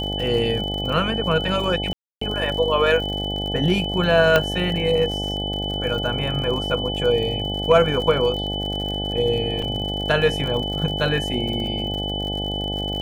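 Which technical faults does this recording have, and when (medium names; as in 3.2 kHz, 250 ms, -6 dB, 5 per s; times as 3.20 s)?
buzz 50 Hz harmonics 17 -28 dBFS
crackle 68 per s -29 dBFS
whine 3 kHz -27 dBFS
1.93–2.21 s: dropout 284 ms
4.36 s: pop -3 dBFS
9.62 s: dropout 4.2 ms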